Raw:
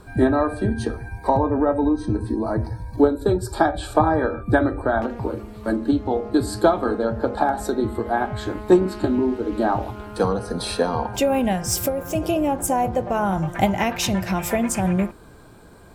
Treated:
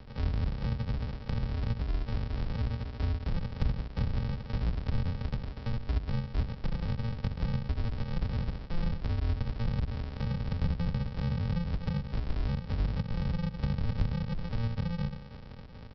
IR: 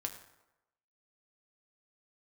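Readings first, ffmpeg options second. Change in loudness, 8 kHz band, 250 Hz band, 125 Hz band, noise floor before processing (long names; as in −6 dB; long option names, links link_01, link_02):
−12.0 dB, below −35 dB, −16.0 dB, −2.0 dB, −45 dBFS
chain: -filter_complex "[0:a]adynamicequalizer=threshold=0.0112:dfrequency=3000:dqfactor=1:tfrequency=3000:tqfactor=1:attack=5:release=100:ratio=0.375:range=2:mode=cutabove:tftype=bell,areverse,acompressor=threshold=-27dB:ratio=8,areverse,crystalizer=i=5.5:c=0,asplit=2[link_01][link_02];[link_02]adelay=69,lowpass=frequency=960:poles=1,volume=-8dB,asplit=2[link_03][link_04];[link_04]adelay=69,lowpass=frequency=960:poles=1,volume=0.46,asplit=2[link_05][link_06];[link_06]adelay=69,lowpass=frequency=960:poles=1,volume=0.46,asplit=2[link_07][link_08];[link_08]adelay=69,lowpass=frequency=960:poles=1,volume=0.46,asplit=2[link_09][link_10];[link_10]adelay=69,lowpass=frequency=960:poles=1,volume=0.46[link_11];[link_01][link_03][link_05][link_07][link_09][link_11]amix=inputs=6:normalize=0,aresample=11025,acrusher=samples=32:mix=1:aa=0.000001,aresample=44100,acrossover=split=180[link_12][link_13];[link_13]acompressor=threshold=-39dB:ratio=10[link_14];[link_12][link_14]amix=inputs=2:normalize=0"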